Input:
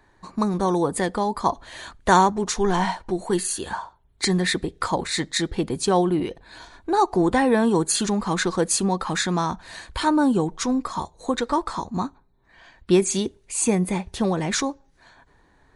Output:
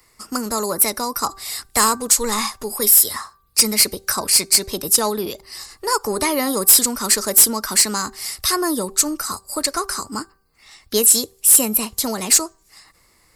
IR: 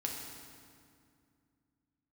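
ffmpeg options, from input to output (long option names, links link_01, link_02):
-filter_complex "[0:a]acrossover=split=130|2800[link_01][link_02][link_03];[link_03]crystalizer=i=6:c=0[link_04];[link_01][link_02][link_04]amix=inputs=3:normalize=0,tiltshelf=frequency=1100:gain=-3,asoftclip=type=tanh:threshold=-6dB,asetrate=52038,aresample=44100,bandreject=frequency=388.4:width_type=h:width=4,bandreject=frequency=776.8:width_type=h:width=4,bandreject=frequency=1165.2:width_type=h:width=4,bandreject=frequency=1553.6:width_type=h:width=4"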